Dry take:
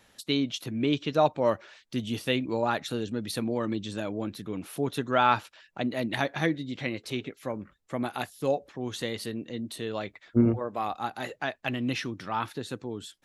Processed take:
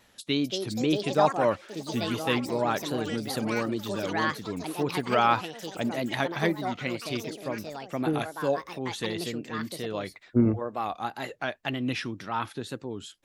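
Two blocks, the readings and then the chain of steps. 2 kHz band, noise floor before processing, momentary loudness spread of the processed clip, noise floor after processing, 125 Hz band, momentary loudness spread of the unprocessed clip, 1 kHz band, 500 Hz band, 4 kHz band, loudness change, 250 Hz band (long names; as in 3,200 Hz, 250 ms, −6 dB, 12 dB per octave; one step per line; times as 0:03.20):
+1.5 dB, −64 dBFS, 10 LU, −57 dBFS, +0.5 dB, 12 LU, +1.5 dB, +1.0 dB, +1.0 dB, +1.0 dB, +0.5 dB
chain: tape wow and flutter 88 cents
delay with pitch and tempo change per echo 304 ms, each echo +5 semitones, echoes 3, each echo −6 dB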